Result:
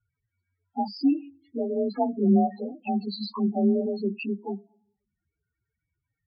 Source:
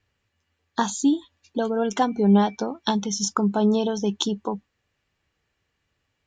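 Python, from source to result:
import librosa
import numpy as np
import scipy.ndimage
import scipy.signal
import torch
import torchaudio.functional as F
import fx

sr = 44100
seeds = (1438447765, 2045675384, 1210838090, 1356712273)

y = fx.partial_stretch(x, sr, pct=90)
y = fx.rev_double_slope(y, sr, seeds[0], early_s=0.79, late_s=2.2, knee_db=-27, drr_db=19.5)
y = fx.spec_topn(y, sr, count=8)
y = y * 10.0 ** (-1.5 / 20.0)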